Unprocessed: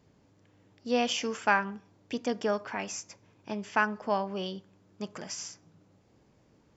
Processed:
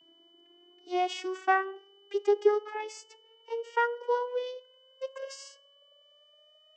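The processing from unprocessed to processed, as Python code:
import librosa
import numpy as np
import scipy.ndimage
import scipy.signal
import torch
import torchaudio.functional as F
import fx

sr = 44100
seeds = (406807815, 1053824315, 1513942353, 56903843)

y = fx.vocoder_glide(x, sr, note=64, semitones=11)
y = y + 10.0 ** (-62.0 / 20.0) * np.sin(2.0 * np.pi * 3000.0 * np.arange(len(y)) / sr)
y = y * librosa.db_to_amplitude(2.0)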